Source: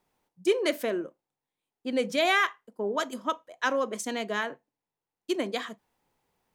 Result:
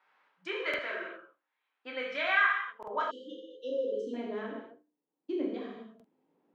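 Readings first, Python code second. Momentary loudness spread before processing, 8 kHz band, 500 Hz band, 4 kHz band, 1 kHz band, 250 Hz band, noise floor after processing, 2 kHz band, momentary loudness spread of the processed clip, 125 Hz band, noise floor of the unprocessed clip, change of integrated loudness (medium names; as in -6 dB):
11 LU, under -25 dB, -6.5 dB, -8.0 dB, -4.5 dB, -6.5 dB, under -85 dBFS, -0.5 dB, 19 LU, no reading, under -85 dBFS, -4.0 dB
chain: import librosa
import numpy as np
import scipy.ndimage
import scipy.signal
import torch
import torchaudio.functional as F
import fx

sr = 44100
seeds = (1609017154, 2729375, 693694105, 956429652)

y = scipy.signal.sosfilt(scipy.signal.cheby1(2, 1.0, [210.0, 3800.0], 'bandpass', fs=sr, output='sos'), x)
y = fx.peak_eq(y, sr, hz=270.0, db=-5.0, octaves=1.8)
y = fx.hum_notches(y, sr, base_hz=50, count=6)
y = fx.echo_feedback(y, sr, ms=77, feedback_pct=24, wet_db=-24.0)
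y = fx.filter_sweep_bandpass(y, sr, from_hz=1500.0, to_hz=280.0, start_s=2.49, end_s=4.29, q=2.0)
y = fx.rev_gated(y, sr, seeds[0], gate_ms=280, shape='falling', drr_db=-4.5)
y = fx.spec_erase(y, sr, start_s=3.11, length_s=1.03, low_hz=550.0, high_hz=2700.0)
y = fx.buffer_glitch(y, sr, at_s=(0.69, 2.78, 5.95), block=2048, repeats=1)
y = fx.band_squash(y, sr, depth_pct=40)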